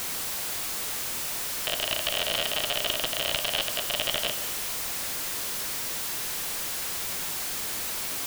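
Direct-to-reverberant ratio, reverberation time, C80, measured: 8.5 dB, 1.5 s, 11.0 dB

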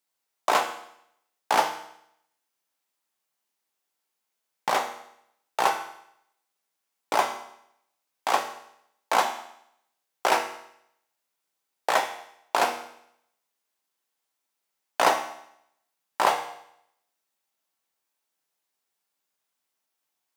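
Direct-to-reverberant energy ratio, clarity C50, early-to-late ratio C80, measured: 4.0 dB, 9.0 dB, 12.0 dB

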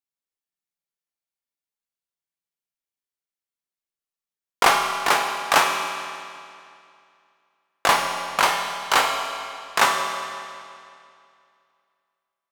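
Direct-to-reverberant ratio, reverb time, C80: 2.0 dB, 2.4 s, 5.0 dB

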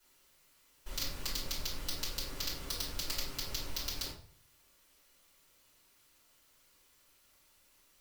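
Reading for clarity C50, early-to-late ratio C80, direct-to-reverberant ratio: 6.0 dB, 11.5 dB, -9.0 dB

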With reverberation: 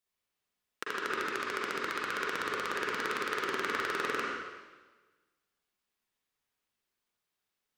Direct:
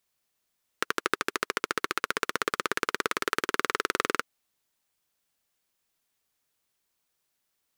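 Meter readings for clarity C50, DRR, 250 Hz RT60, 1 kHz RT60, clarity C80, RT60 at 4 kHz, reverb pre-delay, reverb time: -3.0 dB, -6.0 dB, 1.3 s, 1.3 s, 0.5 dB, 1.3 s, 39 ms, 1.3 s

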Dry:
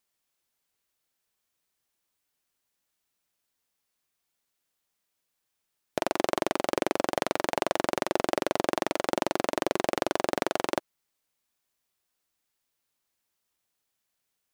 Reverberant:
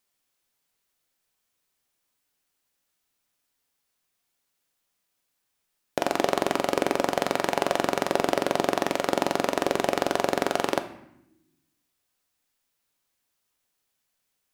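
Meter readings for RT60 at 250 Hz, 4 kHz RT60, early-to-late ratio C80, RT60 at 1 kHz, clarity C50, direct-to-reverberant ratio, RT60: 1.3 s, 0.65 s, 15.0 dB, 0.80 s, 12.5 dB, 8.0 dB, 0.80 s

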